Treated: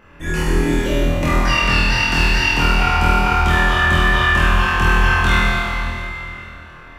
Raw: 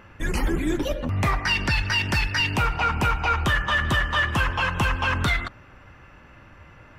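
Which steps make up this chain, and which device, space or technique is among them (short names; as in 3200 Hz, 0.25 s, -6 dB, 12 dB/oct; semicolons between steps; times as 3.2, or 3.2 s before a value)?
tunnel (flutter echo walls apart 4.2 m, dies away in 0.85 s; reverb RT60 3.5 s, pre-delay 12 ms, DRR -3 dB); gain -2.5 dB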